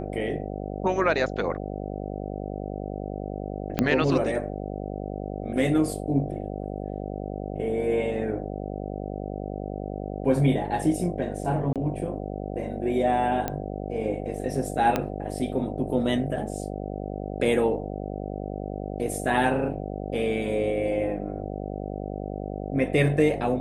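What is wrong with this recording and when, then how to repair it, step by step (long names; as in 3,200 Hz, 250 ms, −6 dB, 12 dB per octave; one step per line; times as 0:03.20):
mains buzz 50 Hz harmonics 15 −33 dBFS
0:03.79: click −9 dBFS
0:11.73–0:11.76: drop-out 27 ms
0:13.48: click −13 dBFS
0:14.96: click −10 dBFS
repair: click removal
hum removal 50 Hz, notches 15
repair the gap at 0:11.73, 27 ms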